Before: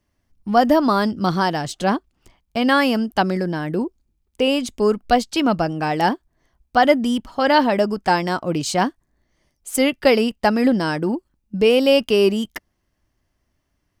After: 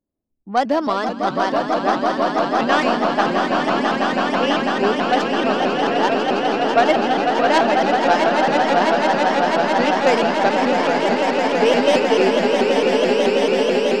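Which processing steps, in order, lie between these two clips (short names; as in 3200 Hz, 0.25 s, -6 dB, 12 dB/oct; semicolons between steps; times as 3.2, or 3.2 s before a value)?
tracing distortion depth 0.18 ms; low-pass opened by the level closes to 410 Hz, open at -11 dBFS; three-band isolator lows -15 dB, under 240 Hz, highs -18 dB, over 6900 Hz; on a send: swelling echo 0.165 s, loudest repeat 8, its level -6 dB; on the sum: shaped vibrato saw up 4.6 Hz, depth 160 cents; gain -2.5 dB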